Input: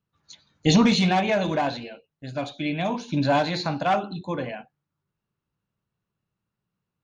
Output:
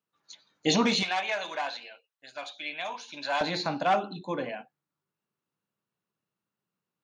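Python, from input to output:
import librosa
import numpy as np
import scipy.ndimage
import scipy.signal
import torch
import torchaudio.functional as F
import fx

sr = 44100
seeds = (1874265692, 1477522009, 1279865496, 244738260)

y = fx.highpass(x, sr, hz=fx.steps((0.0, 310.0), (1.03, 960.0), (3.41, 220.0)), slope=12)
y = y * 10.0 ** (-2.0 / 20.0)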